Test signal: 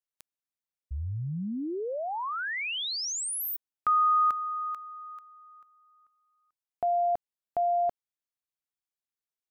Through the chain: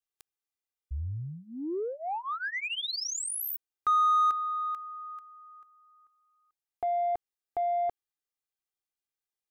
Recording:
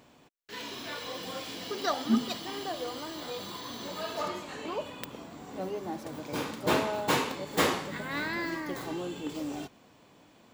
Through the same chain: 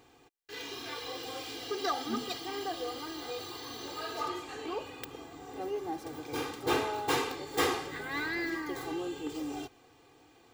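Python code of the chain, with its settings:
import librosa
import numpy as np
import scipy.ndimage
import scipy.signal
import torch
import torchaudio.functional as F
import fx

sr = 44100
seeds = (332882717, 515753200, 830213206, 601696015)

p1 = x + 0.9 * np.pad(x, (int(2.5 * sr / 1000.0), 0))[:len(x)]
p2 = 10.0 ** (-24.0 / 20.0) * np.tanh(p1 / 10.0 ** (-24.0 / 20.0))
p3 = p1 + F.gain(torch.from_numpy(p2), -5.0).numpy()
y = F.gain(torch.from_numpy(p3), -7.5).numpy()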